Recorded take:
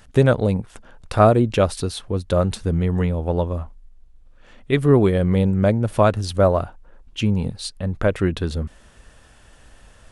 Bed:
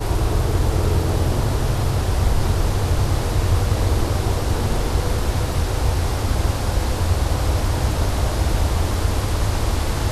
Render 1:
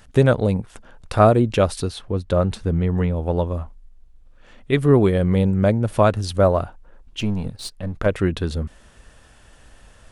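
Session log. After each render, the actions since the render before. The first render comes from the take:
0:01.88–0:03.16: high-shelf EQ 5,000 Hz −8.5 dB
0:07.20–0:08.06: gain on one half-wave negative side −7 dB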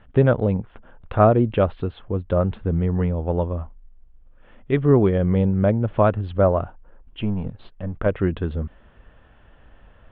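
elliptic low-pass filter 3,300 Hz, stop band 50 dB
high-shelf EQ 2,400 Hz −11 dB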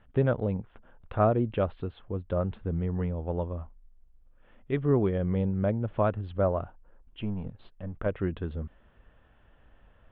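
level −8.5 dB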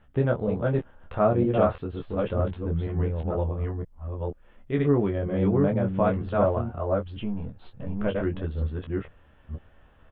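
delay that plays each chunk backwards 478 ms, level −1.5 dB
ambience of single reflections 14 ms −5.5 dB, 25 ms −7 dB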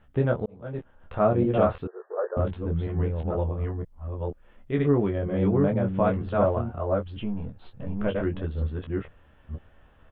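0:00.46–0:01.24: fade in
0:01.87–0:02.37: linear-phase brick-wall band-pass 360–1,900 Hz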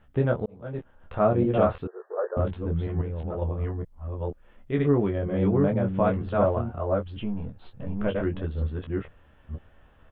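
0:03.01–0:03.42: downward compressor, threshold −27 dBFS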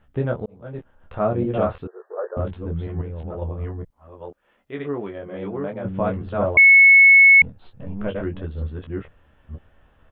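0:03.90–0:05.85: high-pass filter 530 Hz 6 dB per octave
0:06.57–0:07.42: beep over 2,200 Hz −7 dBFS

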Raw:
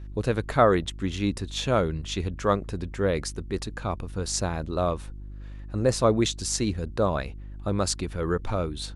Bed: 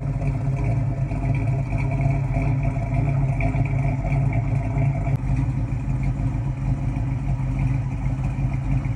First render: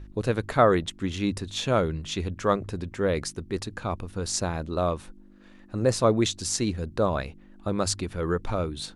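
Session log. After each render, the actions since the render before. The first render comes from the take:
hum removal 50 Hz, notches 3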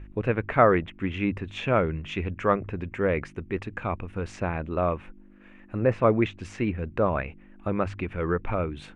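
treble cut that deepens with the level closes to 2,700 Hz, closed at −23 dBFS
high shelf with overshoot 3,300 Hz −10 dB, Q 3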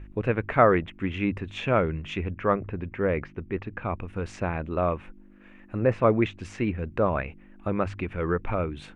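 0:02.17–0:03.99: high-frequency loss of the air 230 metres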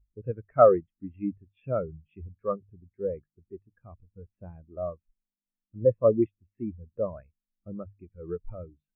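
every bin expanded away from the loudest bin 2.5 to 1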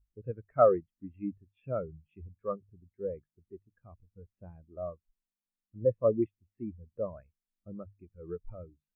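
level −5 dB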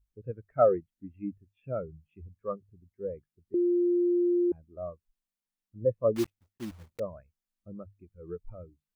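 0:00.52–0:01.79: Butterworth band-reject 1,100 Hz, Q 3.6
0:03.54–0:04.52: beep over 351 Hz −22 dBFS
0:06.16–0:07.00: one scale factor per block 3 bits

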